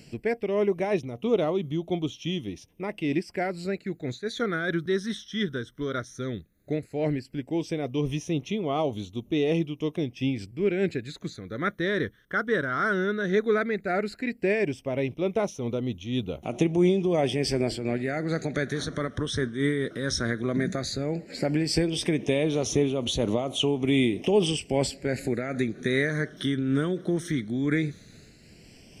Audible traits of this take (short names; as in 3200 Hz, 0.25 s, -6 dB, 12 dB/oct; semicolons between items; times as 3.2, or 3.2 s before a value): phasing stages 12, 0.14 Hz, lowest notch 800–1600 Hz; noise-modulated level